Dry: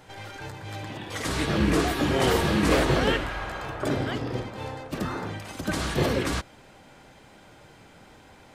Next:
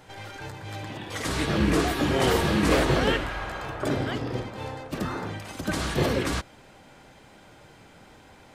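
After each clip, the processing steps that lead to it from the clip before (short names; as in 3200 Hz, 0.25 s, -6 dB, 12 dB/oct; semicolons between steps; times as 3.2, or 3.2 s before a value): nothing audible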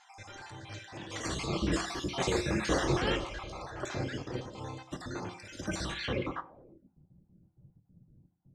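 random spectral dropouts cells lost 39%; reverb RT60 0.60 s, pre-delay 3 ms, DRR 8.5 dB; low-pass sweep 6600 Hz -> 160 Hz, 5.87–6.97; gain -7 dB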